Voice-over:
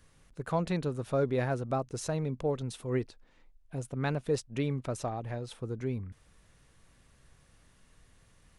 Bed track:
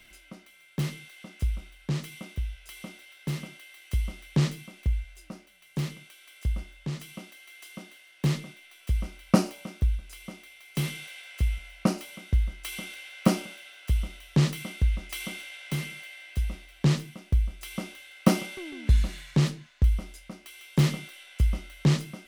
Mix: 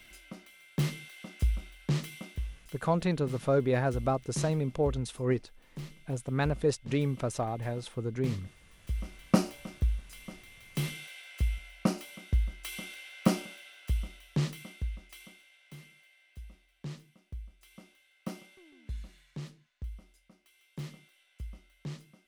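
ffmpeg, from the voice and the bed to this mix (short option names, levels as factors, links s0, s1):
-filter_complex "[0:a]adelay=2350,volume=1.33[s0];[1:a]volume=2.51,afade=t=out:st=1.98:d=0.81:silence=0.266073,afade=t=in:st=8.73:d=0.47:silence=0.398107,afade=t=out:st=13.58:d=1.8:silence=0.177828[s1];[s0][s1]amix=inputs=2:normalize=0"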